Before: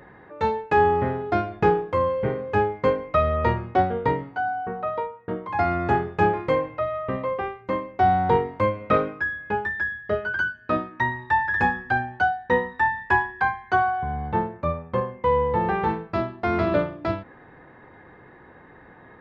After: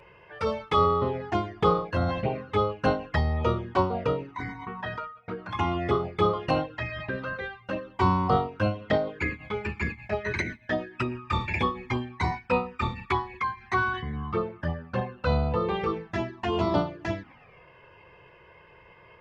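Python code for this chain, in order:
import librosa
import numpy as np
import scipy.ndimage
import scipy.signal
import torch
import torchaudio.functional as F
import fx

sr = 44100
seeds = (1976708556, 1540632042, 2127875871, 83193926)

y = fx.env_flanger(x, sr, rest_ms=2.1, full_db=-18.5)
y = fx.formant_shift(y, sr, semitones=5)
y = y * librosa.db_to_amplitude(-1.5)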